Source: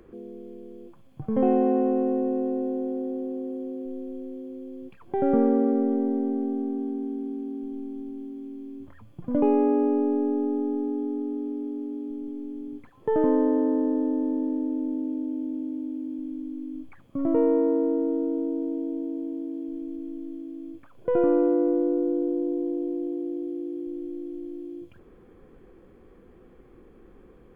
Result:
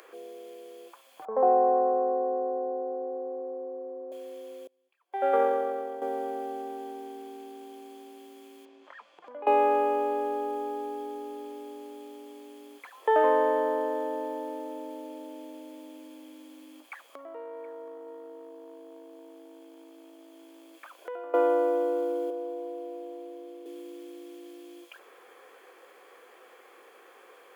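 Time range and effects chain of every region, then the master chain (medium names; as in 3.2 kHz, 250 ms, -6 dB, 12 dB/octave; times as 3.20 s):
1.25–4.12 s: low-pass 1.1 kHz 24 dB/octave + dynamic bell 570 Hz, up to -3 dB, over -38 dBFS, Q 4.6
4.67–6.02 s: hum notches 60/120/180/240/300/360 Hz + upward expansion 2.5:1, over -38 dBFS
8.65–9.47 s: distance through air 140 m + compression 5:1, threshold -38 dBFS
16.80–21.34 s: compression 20:1, threshold -36 dBFS + delay 723 ms -19.5 dB
22.30–23.66 s: high-pass 390 Hz + treble shelf 2.1 kHz -9.5 dB
whole clip: high-pass 560 Hz 24 dB/octave; treble shelf 2.1 kHz +10 dB; trim +7.5 dB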